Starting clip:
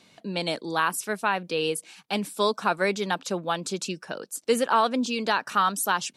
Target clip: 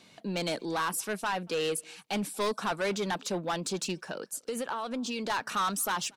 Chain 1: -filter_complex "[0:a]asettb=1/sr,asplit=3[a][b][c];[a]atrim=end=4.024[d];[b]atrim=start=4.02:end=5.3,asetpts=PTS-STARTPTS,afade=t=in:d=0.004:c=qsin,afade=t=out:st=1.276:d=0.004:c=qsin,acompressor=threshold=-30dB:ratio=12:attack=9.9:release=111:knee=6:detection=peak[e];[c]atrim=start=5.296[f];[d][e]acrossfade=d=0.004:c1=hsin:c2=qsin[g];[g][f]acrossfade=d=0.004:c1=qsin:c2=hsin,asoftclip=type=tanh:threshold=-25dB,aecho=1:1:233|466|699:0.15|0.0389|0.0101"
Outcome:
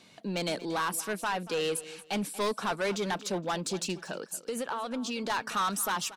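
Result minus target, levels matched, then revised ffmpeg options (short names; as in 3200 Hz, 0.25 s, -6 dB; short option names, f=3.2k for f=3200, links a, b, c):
echo-to-direct +12.5 dB
-filter_complex "[0:a]asettb=1/sr,asplit=3[a][b][c];[a]atrim=end=4.024[d];[b]atrim=start=4.02:end=5.3,asetpts=PTS-STARTPTS,afade=t=in:d=0.004:c=qsin,afade=t=out:st=1.276:d=0.004:c=qsin,acompressor=threshold=-30dB:ratio=12:attack=9.9:release=111:knee=6:detection=peak[e];[c]atrim=start=5.296[f];[d][e]acrossfade=d=0.004:c1=hsin:c2=qsin[g];[g][f]acrossfade=d=0.004:c1=qsin:c2=hsin,asoftclip=type=tanh:threshold=-25dB,aecho=1:1:233:0.0376"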